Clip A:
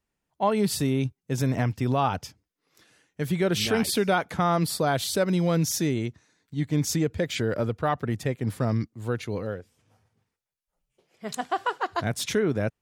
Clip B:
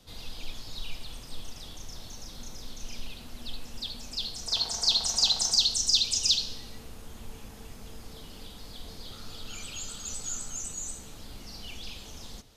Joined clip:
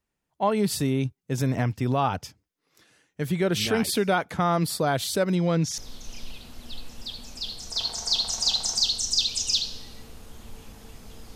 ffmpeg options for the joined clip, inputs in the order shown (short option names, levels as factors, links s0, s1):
-filter_complex "[0:a]asettb=1/sr,asplit=3[s0][s1][s2];[s0]atrim=end=5.354[s3];[s1]atrim=start=5.35:end=5.78,asetpts=PTS-STARTPTS,afade=t=in:d=0.004:c=qsin,afade=t=out:st=0.426:d=0.004:c=qsin,lowpass=6400[s4];[s2]atrim=start=5.776[s5];[s3][s4]acrossfade=d=0.004:c1=hsin:c2=qsin[s6];[s6][s5]acrossfade=d=0.004:c1=qsin:c2=hsin,apad=whole_dur=11.35,atrim=end=11.35,atrim=end=5.782[s7];[1:a]atrim=start=2.538:end=8.11[s8];[s7][s8]acrossfade=d=0.004:c1=hsin:c2=hsin"